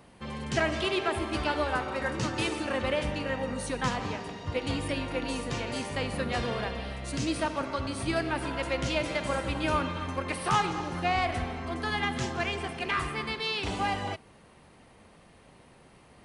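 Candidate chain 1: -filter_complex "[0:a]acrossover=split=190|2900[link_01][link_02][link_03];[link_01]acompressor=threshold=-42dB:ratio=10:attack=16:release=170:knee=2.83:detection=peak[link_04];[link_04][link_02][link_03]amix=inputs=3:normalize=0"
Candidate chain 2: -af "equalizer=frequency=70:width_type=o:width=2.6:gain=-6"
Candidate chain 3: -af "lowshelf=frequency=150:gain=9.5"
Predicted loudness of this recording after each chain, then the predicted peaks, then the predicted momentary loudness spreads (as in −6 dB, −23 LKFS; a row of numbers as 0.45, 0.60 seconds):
−31.0, −31.5, −29.0 LKFS; −14.5, −13.5, −11.0 dBFS; 6, 6, 5 LU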